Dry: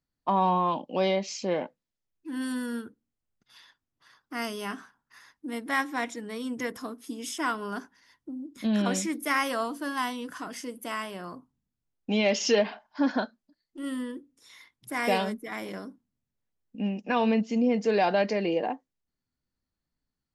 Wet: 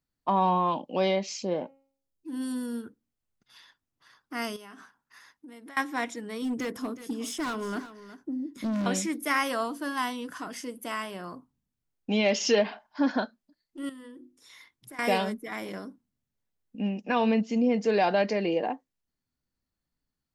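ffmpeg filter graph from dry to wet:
-filter_complex "[0:a]asettb=1/sr,asplit=3[s0][s1][s2];[s0]atrim=end=1.424[s3];[s1]atrim=start=1.42:end=2.84,asetpts=PTS-STARTPTS,afade=t=in:d=0.004:c=qsin,afade=t=out:st=1.416:d=0.004:c=qsin,equalizer=f=1800:t=o:w=1.5:g=-11,bandreject=f=271.8:t=h:w=4,bandreject=f=543.6:t=h:w=4,bandreject=f=815.4:t=h:w=4,bandreject=f=1087.2:t=h:w=4,bandreject=f=1359:t=h:w=4,bandreject=f=1630.8:t=h:w=4,bandreject=f=1902.6:t=h:w=4,bandreject=f=2174.4:t=h:w=4,bandreject=f=2446.2:t=h:w=4,bandreject=f=2718:t=h:w=4,bandreject=f=2989.8:t=h:w=4[s4];[s2]atrim=start=2.836[s5];[s3][s4]acrossfade=d=0.004:c1=hsin:c2=qsin[s6];[s6][s5]acrossfade=d=0.004:c1=qsin:c2=hsin,asettb=1/sr,asplit=3[s7][s8][s9];[s7]atrim=end=4.564[s10];[s8]atrim=start=4.56:end=5.77,asetpts=PTS-STARTPTS,afade=t=in:d=0.004:c=qsin,afade=t=out:st=1.206:d=0.004:c=qsin,acompressor=threshold=0.00794:ratio=16:attack=3.2:release=140:knee=1:detection=peak,lowshelf=f=130:g=-7[s11];[s9]atrim=start=5.766[s12];[s10][s11]acrossfade=d=0.004:c1=hsin:c2=qsin[s13];[s13][s12]acrossfade=d=0.004:c1=qsin:c2=hsin,asettb=1/sr,asplit=3[s14][s15][s16];[s14]atrim=end=6.424[s17];[s15]atrim=start=6.42:end=8.86,asetpts=PTS-STARTPTS,afade=t=in:d=0.004:c=qsin,afade=t=out:st=2.436:d=0.004:c=qsin,volume=35.5,asoftclip=hard,volume=0.0282,equalizer=f=300:w=0.73:g=5,aecho=1:1:366:0.188,atrim=end_sample=107604[s18];[s16]atrim=start=8.856[s19];[s17][s18]acrossfade=d=0.004:c1=hsin:c2=qsin[s20];[s20][s19]acrossfade=d=0.004:c1=qsin:c2=hsin,asettb=1/sr,asplit=3[s21][s22][s23];[s21]atrim=end=13.894[s24];[s22]atrim=start=13.89:end=14.99,asetpts=PTS-STARTPTS,afade=t=in:d=0.004:c=qsin,afade=t=out:st=1.096:d=0.004:c=qsin,bandreject=f=50:t=h:w=6,bandreject=f=100:t=h:w=6,bandreject=f=150:t=h:w=6,bandreject=f=200:t=h:w=6,bandreject=f=250:t=h:w=6,bandreject=f=300:t=h:w=6,bandreject=f=350:t=h:w=6,acompressor=threshold=0.00708:ratio=6:attack=3.2:release=140:knee=1:detection=peak[s25];[s23]atrim=start=14.986[s26];[s24][s25]acrossfade=d=0.004:c1=hsin:c2=qsin[s27];[s27][s26]acrossfade=d=0.004:c1=qsin:c2=hsin"

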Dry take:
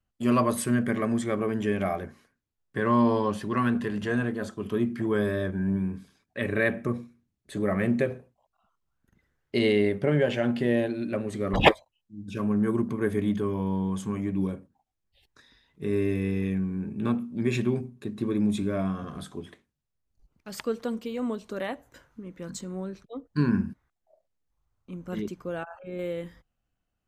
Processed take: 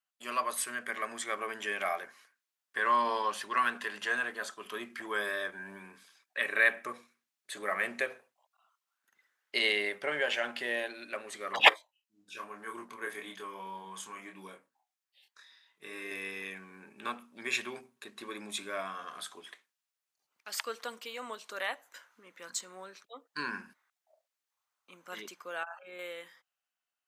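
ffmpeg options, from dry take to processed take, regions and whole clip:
-filter_complex "[0:a]asettb=1/sr,asplit=3[s0][s1][s2];[s0]atrim=end=11.694[s3];[s1]atrim=start=11.69:end=16.11,asetpts=PTS-STARTPTS,afade=t=in:d=0.004:c=qsin,afade=t=out:st=4.416:d=0.004:c=qsin,flanger=delay=4.4:depth=4.5:regen=-78:speed=1.1:shape=sinusoidal,asplit=2[s4][s5];[s5]adelay=26,volume=0.596[s6];[s4][s6]amix=inputs=2:normalize=0,atrim=end_sample=194922[s7];[s2]atrim=start=16.106[s8];[s3][s7]acrossfade=d=0.004:c1=hsin:c2=qsin[s9];[s9][s8]acrossfade=d=0.004:c1=qsin:c2=hsin,highpass=1100,dynaudnorm=f=170:g=13:m=1.88,volume=0.841"

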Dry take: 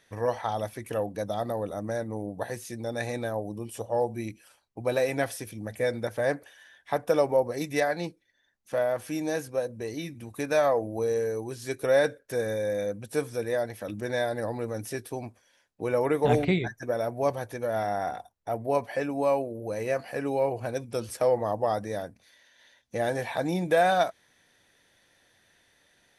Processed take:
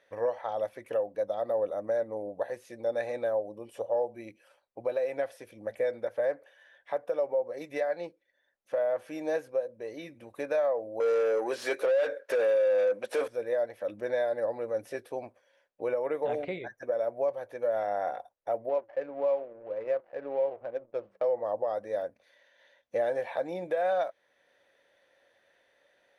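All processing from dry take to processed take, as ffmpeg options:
-filter_complex "[0:a]asettb=1/sr,asplit=3[s0][s1][s2];[s0]atrim=end=11.004[s3];[s1]atrim=start=11:end=13.28,asetpts=PTS-STARTPTS,afade=t=in:d=0.004:c=qsin,afade=t=out:st=2.276:d=0.004:c=qsin,highpass=170,asplit=2[s4][s5];[s5]highpass=f=720:p=1,volume=20,asoftclip=type=tanh:threshold=0.251[s6];[s4][s6]amix=inputs=2:normalize=0,lowpass=f=5100:p=1,volume=0.501[s7];[s2]atrim=start=13.276[s8];[s3][s7]acrossfade=d=0.004:c1=hsin:c2=qsin[s9];[s9][s8]acrossfade=d=0.004:c1=qsin:c2=hsin,asettb=1/sr,asplit=3[s10][s11][s12];[s10]atrim=end=18.694[s13];[s11]atrim=start=18.69:end=21.24,asetpts=PTS-STARTPTS,afade=t=in:d=0.004:c=qsin,afade=t=out:st=2.546:d=0.004:c=qsin,aeval=exprs='sgn(val(0))*max(abs(val(0))-0.00562,0)':c=same,flanger=delay=3.3:depth=4.5:regen=-88:speed=1:shape=sinusoidal,adynamicsmooth=sensitivity=7:basefreq=1000[s14];[s12]atrim=start=21.236[s15];[s13][s14]acrossfade=d=0.004:c1=hsin:c2=qsin[s16];[s16][s15]acrossfade=d=0.004:c1=qsin:c2=hsin,equalizer=f=550:w=4.1:g=11.5,alimiter=limit=0.141:level=0:latency=1:release=499,bass=f=250:g=-14,treble=f=4000:g=-13,volume=0.75"

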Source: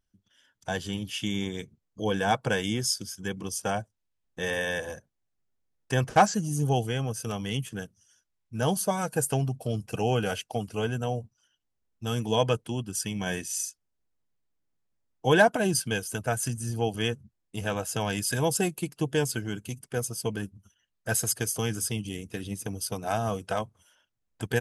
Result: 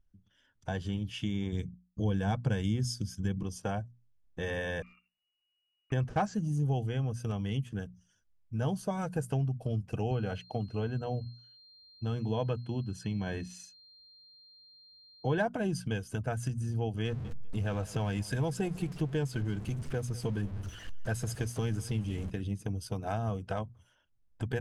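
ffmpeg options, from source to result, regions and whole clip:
-filter_complex "[0:a]asettb=1/sr,asplit=3[s0][s1][s2];[s0]atrim=end=1.524[s3];[s1]atrim=start=1.52:end=3.43,asetpts=PTS-STARTPTS,afade=t=in:d=0.004:c=qsin,afade=t=out:st=1.906:d=0.004:c=qsin,agate=range=0.0224:threshold=0.00251:ratio=3:release=100:detection=peak,bass=f=250:g=8,treble=f=4000:g=6[s4];[s2]atrim=start=3.426[s5];[s3][s4]acrossfade=d=0.004:c1=hsin:c2=qsin[s6];[s6][s5]acrossfade=d=0.004:c1=qsin:c2=hsin,asettb=1/sr,asplit=3[s7][s8][s9];[s7]atrim=end=4.824[s10];[s8]atrim=start=4.82:end=5.92,asetpts=PTS-STARTPTS,afade=t=in:d=0.004:c=qsin,afade=t=out:st=1.096:d=0.004:c=qsin,lowpass=f=2500:t=q:w=0.5098,lowpass=f=2500:t=q:w=0.6013,lowpass=f=2500:t=q:w=0.9,lowpass=f=2500:t=q:w=2.563,afreqshift=-2900,aeval=exprs='clip(val(0),-1,0.02)':c=same,acompressor=threshold=0.00178:ratio=6:attack=3.2:release=140:knee=1:detection=peak[s11];[s9]atrim=start=5.916[s12];[s10][s11]acrossfade=d=0.004:c1=hsin:c2=qsin[s13];[s13][s12]acrossfade=d=0.004:c1=qsin:c2=hsin,asettb=1/sr,asplit=3[s14][s15][s16];[s14]atrim=end=10.114[s17];[s15]atrim=start=10.11:end=15.38,asetpts=PTS-STARTPTS,afade=t=in:d=0.004:c=qsin,afade=t=out:st=5.266:d=0.004:c=qsin,aeval=exprs='val(0)+0.00708*sin(2*PI*4200*n/s)':c=same,highpass=57,highshelf=f=5400:g=-12[s18];[s16]atrim=start=15.376[s19];[s17][s18]acrossfade=d=0.004:c1=hsin:c2=qsin[s20];[s20][s19]acrossfade=d=0.004:c1=qsin:c2=hsin,asettb=1/sr,asplit=3[s21][s22][s23];[s21]atrim=end=17.054[s24];[s22]atrim=start=17.05:end=22.3,asetpts=PTS-STARTPTS,afade=t=in:d=0.004:c=qsin,afade=t=out:st=5.246:d=0.004:c=qsin,aeval=exprs='val(0)+0.5*0.015*sgn(val(0))':c=same,aecho=1:1:197|394:0.0841|0.0151,atrim=end_sample=231525[s25];[s23]atrim=start=22.296[s26];[s24][s25]acrossfade=d=0.004:c1=hsin:c2=qsin[s27];[s27][s26]acrossfade=d=0.004:c1=qsin:c2=hsin,aemphasis=mode=reproduction:type=bsi,bandreject=f=60:t=h:w=6,bandreject=f=120:t=h:w=6,bandreject=f=180:t=h:w=6,bandreject=f=240:t=h:w=6,acompressor=threshold=0.0355:ratio=2,volume=0.668"

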